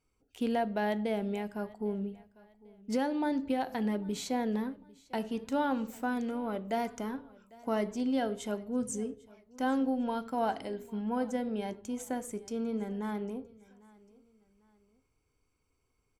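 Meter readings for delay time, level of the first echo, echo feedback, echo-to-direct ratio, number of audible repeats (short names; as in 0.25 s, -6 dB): 0.799 s, -23.0 dB, 35%, -22.5 dB, 2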